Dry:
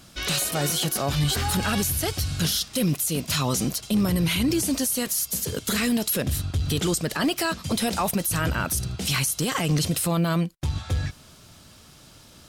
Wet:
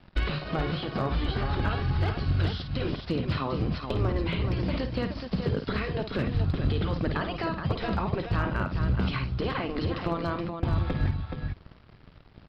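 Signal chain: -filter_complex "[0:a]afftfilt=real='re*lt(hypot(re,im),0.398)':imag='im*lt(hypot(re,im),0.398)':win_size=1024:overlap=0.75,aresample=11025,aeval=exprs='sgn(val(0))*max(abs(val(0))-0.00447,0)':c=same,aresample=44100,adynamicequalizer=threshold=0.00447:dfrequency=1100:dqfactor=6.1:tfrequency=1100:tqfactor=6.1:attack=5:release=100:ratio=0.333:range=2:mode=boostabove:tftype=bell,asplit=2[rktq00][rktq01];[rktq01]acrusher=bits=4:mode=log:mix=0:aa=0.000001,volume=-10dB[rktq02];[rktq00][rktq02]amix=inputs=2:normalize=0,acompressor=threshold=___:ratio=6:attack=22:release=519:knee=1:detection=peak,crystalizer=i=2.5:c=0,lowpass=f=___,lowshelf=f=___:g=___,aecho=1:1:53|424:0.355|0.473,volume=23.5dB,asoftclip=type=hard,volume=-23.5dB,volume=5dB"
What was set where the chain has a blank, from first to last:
-35dB, 1700, 200, 12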